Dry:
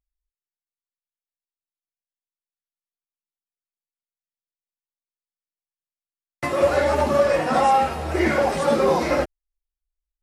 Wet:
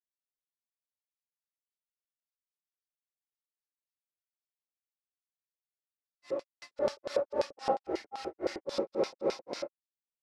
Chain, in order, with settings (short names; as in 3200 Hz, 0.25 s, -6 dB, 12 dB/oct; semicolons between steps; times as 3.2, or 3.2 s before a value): non-linear reverb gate 0.32 s rising, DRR -4.5 dB; LFO band-pass square 5.6 Hz 450–4800 Hz; grains 0.23 s, grains 3.7/s, spray 0.296 s, pitch spread up and down by 0 st; gain -5.5 dB